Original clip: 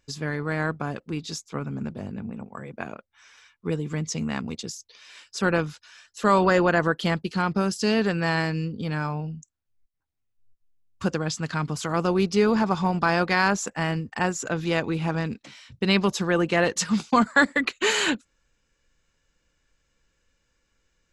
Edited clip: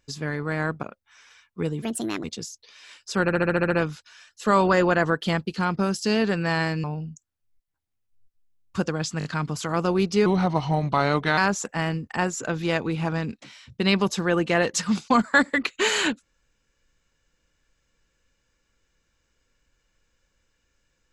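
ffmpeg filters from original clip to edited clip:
-filter_complex "[0:a]asplit=17[a][b][c][d][e][f][g][h][i][j][k][l][m][n][o][p][q];[a]atrim=end=0.832[r];[b]atrim=start=2.898:end=3.894[s];[c]atrim=start=3.89:end=4.5,asetpts=PTS-STARTPTS,asetrate=64386,aresample=44100,atrim=end_sample=18425,asetpts=PTS-STARTPTS[t];[d]atrim=start=4.496:end=5.552[u];[e]atrim=start=5.478:end=5.552[v];[f]atrim=start=5.478:end=5.552[w];[g]atrim=start=5.478:end=5.552[x];[h]atrim=start=5.478:end=5.552[y];[i]atrim=start=5.478:end=5.552[z];[j]atrim=start=5.478:end=5.552[aa];[k]atrim=start=5.478:end=8.612[ab];[l]atrim=start=9.098:end=11.472[ac];[m]atrim=start=11.448:end=11.472[ad];[n]atrim=start=11.448:end=11.472[ae];[o]atrim=start=11.448:end=12.464[af];[p]atrim=start=12.46:end=13.4,asetpts=PTS-STARTPTS,asetrate=37044,aresample=44100[ag];[q]atrim=start=13.396[ah];[r][s]acrossfade=d=0.004:c1=hsin:c2=hsin[ai];[ai][t]acrossfade=d=0.004:c1=hsin:c2=hsin[aj];[aj][u]acrossfade=d=0.004:c1=hsin:c2=hsin[ak];[ak][v]acrossfade=d=0.004:c1=hsin:c2=hsin[al];[al][w]acrossfade=d=0.004:c1=hsin:c2=hsin[am];[am][x]acrossfade=d=0.004:c1=hsin:c2=hsin[an];[an][y]acrossfade=d=0.004:c1=hsin:c2=hsin[ao];[ao][z]acrossfade=d=0.004:c1=hsin:c2=hsin[ap];[ap][aa]acrossfade=d=0.004:c1=hsin:c2=hsin[aq];[aq][ab]acrossfade=d=0.004:c1=hsin:c2=hsin[ar];[ar][ac]acrossfade=d=0.004:c1=hsin:c2=hsin[as];[as][ad]acrossfade=d=0.004:c1=hsin:c2=hsin[at];[at][ae]acrossfade=d=0.004:c1=hsin:c2=hsin[au];[au][af]acrossfade=d=0.004:c1=hsin:c2=hsin[av];[av][ag]acrossfade=d=0.004:c1=hsin:c2=hsin[aw];[aw][ah]acrossfade=d=0.004:c1=hsin:c2=hsin"

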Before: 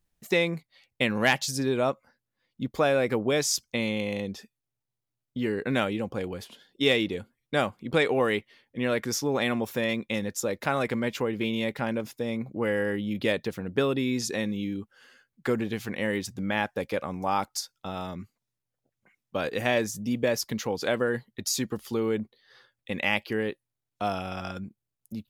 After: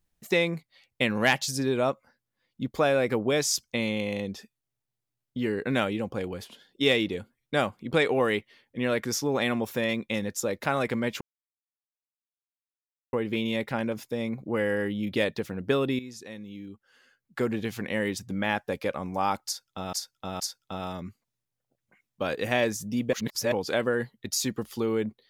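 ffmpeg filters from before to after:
-filter_complex "[0:a]asplit=7[a][b][c][d][e][f][g];[a]atrim=end=11.21,asetpts=PTS-STARTPTS,afade=t=out:st=11.206:d=0.004:c=hsin,apad=pad_dur=1.92[h];[b]atrim=start=11.21:end=14.07,asetpts=PTS-STARTPTS,afade=t=in:d=0.004:c=hsin,afade=t=out:st=2.856:d=0.004:c=hsin:silence=0.211349[i];[c]atrim=start=14.07:end=18.012,asetpts=PTS-STARTPTS,afade=t=in:d=1.58:c=qua:silence=0.211349[j];[d]atrim=start=17.538:end=18.012[k];[e]atrim=start=17.538:end=20.272[l];[f]atrim=start=20.268:end=20.662,asetpts=PTS-STARTPTS,areverse[m];[g]atrim=start=20.658[n];[h][i][j]concat=n=3:v=0:a=1[o];[o][k]acrossfade=d=0.004:c1=hsin:c2=hsin[p];[p][l]acrossfade=d=0.004:c1=hsin:c2=hsin[q];[q][m]acrossfade=d=0.004:c1=hsin:c2=hsin[r];[r][n]acrossfade=d=0.004:c1=hsin:c2=hsin"

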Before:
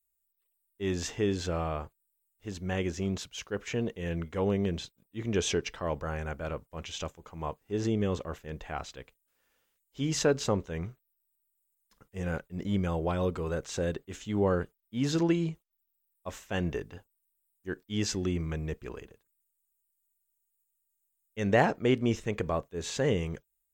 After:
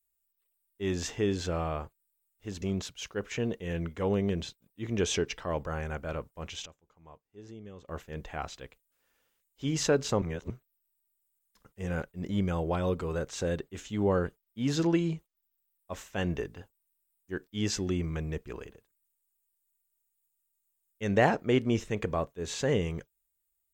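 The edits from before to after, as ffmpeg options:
-filter_complex "[0:a]asplit=6[a][b][c][d][e][f];[a]atrim=end=2.622[g];[b]atrim=start=2.978:end=7.02,asetpts=PTS-STARTPTS,afade=t=out:st=3.792:d=0.25:c=log:silence=0.133352[h];[c]atrim=start=7.02:end=8.24,asetpts=PTS-STARTPTS,volume=-17.5dB[i];[d]atrim=start=8.24:end=10.582,asetpts=PTS-STARTPTS,afade=t=in:d=0.25:c=log:silence=0.133352[j];[e]atrim=start=10.578:end=10.862,asetpts=PTS-STARTPTS,areverse[k];[f]atrim=start=10.858[l];[h][i][j]concat=n=3:v=0:a=1[m];[g][m]acrossfade=d=0.004:c1=hsin:c2=hsin[n];[n][k]acrossfade=d=0.004:c1=hsin:c2=hsin[o];[o][l]acrossfade=d=0.004:c1=hsin:c2=hsin"

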